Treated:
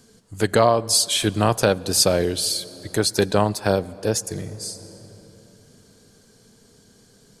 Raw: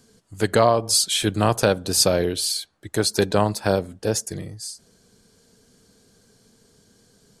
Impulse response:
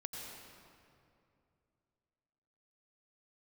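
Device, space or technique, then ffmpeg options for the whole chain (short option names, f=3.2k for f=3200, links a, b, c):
ducked reverb: -filter_complex "[0:a]asplit=3[a][b][c];[1:a]atrim=start_sample=2205[d];[b][d]afir=irnorm=-1:irlink=0[e];[c]apad=whole_len=326380[f];[e][f]sidechaincompress=threshold=-33dB:ratio=4:attack=26:release=686,volume=-3.5dB[g];[a][g]amix=inputs=2:normalize=0"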